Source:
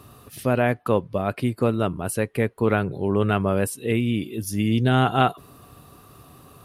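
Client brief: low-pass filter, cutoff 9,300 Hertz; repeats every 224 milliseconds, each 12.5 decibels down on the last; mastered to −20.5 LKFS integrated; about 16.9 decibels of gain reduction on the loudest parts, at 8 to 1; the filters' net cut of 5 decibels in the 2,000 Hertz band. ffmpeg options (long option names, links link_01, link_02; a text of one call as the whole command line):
ffmpeg -i in.wav -af "lowpass=9300,equalizer=frequency=2000:width_type=o:gain=-7.5,acompressor=threshold=-34dB:ratio=8,aecho=1:1:224|448|672:0.237|0.0569|0.0137,volume=18dB" out.wav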